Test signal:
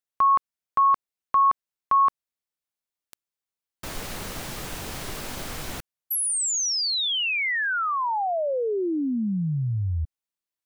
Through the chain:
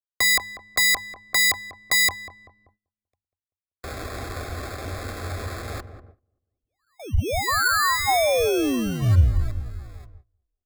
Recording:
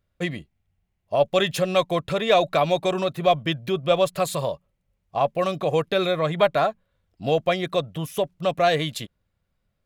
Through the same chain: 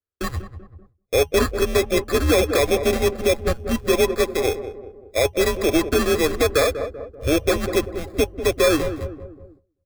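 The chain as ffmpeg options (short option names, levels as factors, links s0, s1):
-filter_complex "[0:a]acrossover=split=260 2500:gain=0.126 1 0.126[s0][s1][s2];[s0][s1][s2]amix=inputs=3:normalize=0,acrossover=split=990[s3][s4];[s3]acrusher=bits=2:mode=log:mix=0:aa=0.000001[s5];[s5][s4]amix=inputs=2:normalize=0,highpass=f=190:t=q:w=0.5412,highpass=f=190:t=q:w=1.307,lowpass=f=3300:t=q:w=0.5176,lowpass=f=3300:t=q:w=0.7071,lowpass=f=3300:t=q:w=1.932,afreqshift=-150,bandreject=f=50:t=h:w=6,bandreject=f=100:t=h:w=6,bandreject=f=150:t=h:w=6,acrusher=samples=15:mix=1:aa=0.000001,asuperstop=centerf=910:order=20:qfactor=5.3,lowshelf=f=120:t=q:w=3:g=9.5,asplit=2[s6][s7];[s7]adelay=193,lowpass=f=950:p=1,volume=0.316,asplit=2[s8][s9];[s9]adelay=193,lowpass=f=950:p=1,volume=0.51,asplit=2[s10][s11];[s11]adelay=193,lowpass=f=950:p=1,volume=0.51,asplit=2[s12][s13];[s13]adelay=193,lowpass=f=950:p=1,volume=0.51,asplit=2[s14][s15];[s15]adelay=193,lowpass=f=950:p=1,volume=0.51,asplit=2[s16][s17];[s17]adelay=193,lowpass=f=950:p=1,volume=0.51[s18];[s8][s10][s12][s14][s16][s18]amix=inputs=6:normalize=0[s19];[s6][s19]amix=inputs=2:normalize=0,agate=range=0.1:threshold=0.00562:ratio=16:release=440:detection=rms,alimiter=level_in=4.22:limit=0.891:release=50:level=0:latency=1,volume=0.447"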